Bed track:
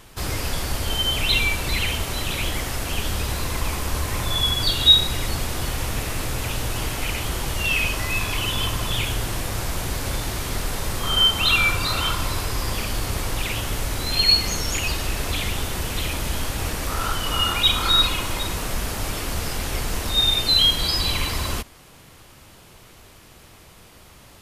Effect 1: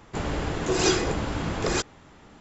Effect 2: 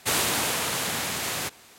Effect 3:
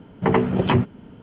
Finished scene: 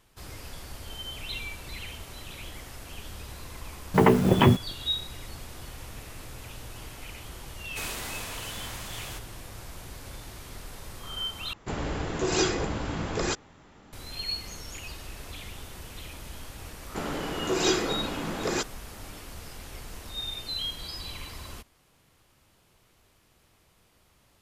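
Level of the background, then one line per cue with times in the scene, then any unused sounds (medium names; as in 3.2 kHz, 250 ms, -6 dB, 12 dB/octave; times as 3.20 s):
bed track -16 dB
3.72 s: add 3 + send-on-delta sampling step -33 dBFS
7.70 s: add 2 -12 dB
11.53 s: replace with 1 -3 dB
16.81 s: add 1 -2 dB + Chebyshev high-pass 200 Hz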